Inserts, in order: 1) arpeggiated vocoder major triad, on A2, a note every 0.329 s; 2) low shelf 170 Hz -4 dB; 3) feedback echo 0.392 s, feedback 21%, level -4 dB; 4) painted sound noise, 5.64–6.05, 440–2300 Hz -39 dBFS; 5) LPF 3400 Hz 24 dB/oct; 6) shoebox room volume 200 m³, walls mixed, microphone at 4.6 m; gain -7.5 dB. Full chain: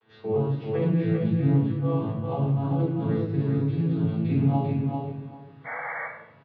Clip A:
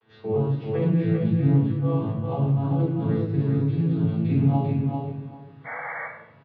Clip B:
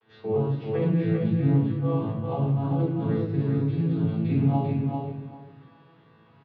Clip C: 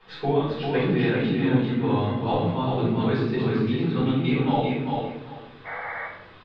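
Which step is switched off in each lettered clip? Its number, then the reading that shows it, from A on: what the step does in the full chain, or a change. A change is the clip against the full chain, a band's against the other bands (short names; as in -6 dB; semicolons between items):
2, 125 Hz band +2.0 dB; 4, 2 kHz band -9.0 dB; 1, 125 Hz band -7.5 dB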